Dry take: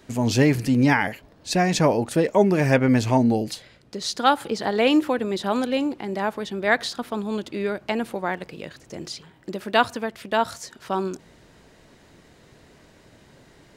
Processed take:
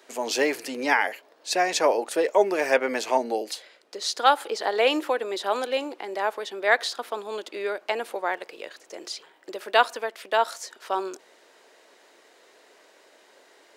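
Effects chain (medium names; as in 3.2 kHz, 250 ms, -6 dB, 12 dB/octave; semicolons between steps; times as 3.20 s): high-pass 400 Hz 24 dB/octave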